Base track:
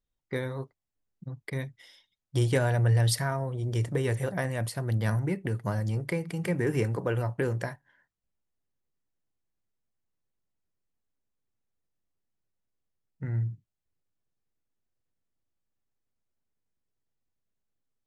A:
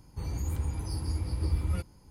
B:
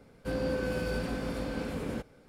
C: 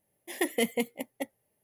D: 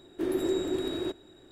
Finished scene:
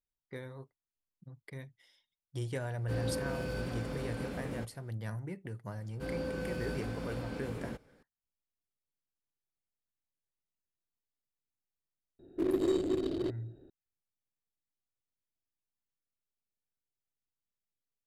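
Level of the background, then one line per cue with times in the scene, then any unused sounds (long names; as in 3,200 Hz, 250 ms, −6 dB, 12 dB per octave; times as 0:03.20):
base track −12 dB
0:02.63: mix in B −5 dB
0:05.75: mix in B −6 dB
0:12.19: mix in D + adaptive Wiener filter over 41 samples
not used: A, C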